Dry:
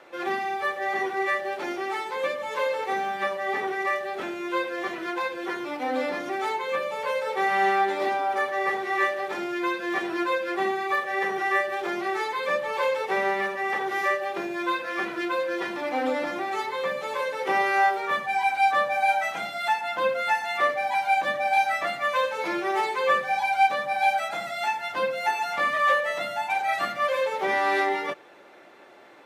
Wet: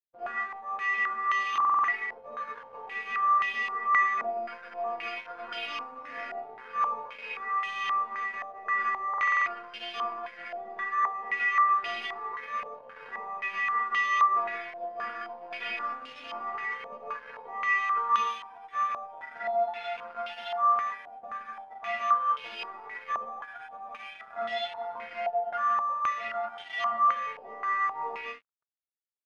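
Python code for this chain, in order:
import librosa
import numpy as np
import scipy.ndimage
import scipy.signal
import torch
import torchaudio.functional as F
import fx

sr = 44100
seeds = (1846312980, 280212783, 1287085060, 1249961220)

p1 = fx.rattle_buzz(x, sr, strikes_db=-44.0, level_db=-24.0)
p2 = p1 + fx.echo_multitap(p1, sr, ms=(45, 176, 217), db=(-13.0, -6.5, -11.5), dry=0)
p3 = np.repeat(p2[::6], 6)[:len(p2)]
p4 = fx.over_compress(p3, sr, threshold_db=-29.0, ratio=-0.5)
p5 = p3 + (p4 * 10.0 ** (2.5 / 20.0))
p6 = fx.stiff_resonator(p5, sr, f0_hz=230.0, decay_s=0.39, stiffness=0.002)
p7 = np.sign(p6) * np.maximum(np.abs(p6) - 10.0 ** (-44.5 / 20.0), 0.0)
p8 = fx.low_shelf(p7, sr, hz=250.0, db=-6.5)
p9 = fx.buffer_glitch(p8, sr, at_s=(1.51, 9.09), block=2048, repeats=7)
y = fx.filter_held_lowpass(p9, sr, hz=3.8, low_hz=690.0, high_hz=3000.0)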